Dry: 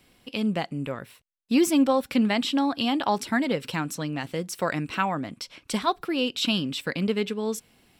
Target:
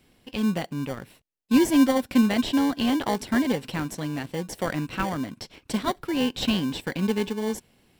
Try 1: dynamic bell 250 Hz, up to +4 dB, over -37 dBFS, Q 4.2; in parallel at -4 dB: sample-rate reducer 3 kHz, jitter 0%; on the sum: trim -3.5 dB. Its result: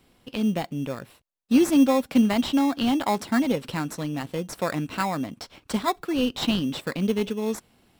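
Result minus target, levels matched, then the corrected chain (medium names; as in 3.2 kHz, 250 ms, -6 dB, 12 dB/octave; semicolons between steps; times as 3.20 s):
sample-rate reducer: distortion -6 dB
dynamic bell 250 Hz, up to +4 dB, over -37 dBFS, Q 4.2; in parallel at -4 dB: sample-rate reducer 1.3 kHz, jitter 0%; on the sum: trim -3.5 dB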